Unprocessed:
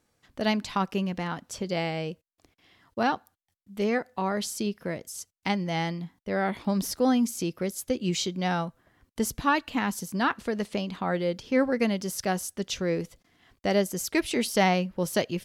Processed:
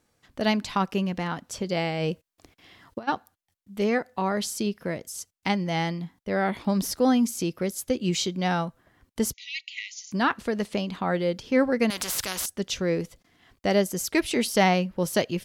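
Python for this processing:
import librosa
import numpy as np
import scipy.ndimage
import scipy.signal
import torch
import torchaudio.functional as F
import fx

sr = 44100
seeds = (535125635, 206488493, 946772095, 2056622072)

y = fx.over_compress(x, sr, threshold_db=-32.0, ratio=-0.5, at=(1.98, 3.07), fade=0.02)
y = fx.brickwall_bandpass(y, sr, low_hz=1900.0, high_hz=7200.0, at=(9.32, 10.11), fade=0.02)
y = fx.spectral_comp(y, sr, ratio=4.0, at=(11.9, 12.46))
y = y * librosa.db_to_amplitude(2.0)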